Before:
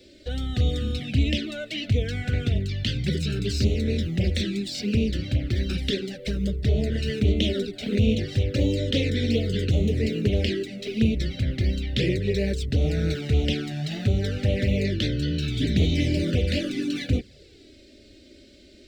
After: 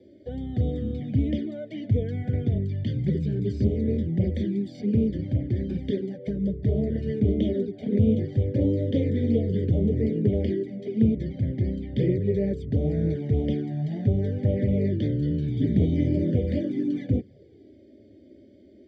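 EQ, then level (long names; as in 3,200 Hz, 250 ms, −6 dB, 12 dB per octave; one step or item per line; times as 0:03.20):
moving average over 33 samples
high-pass filter 89 Hz 24 dB per octave
+2.0 dB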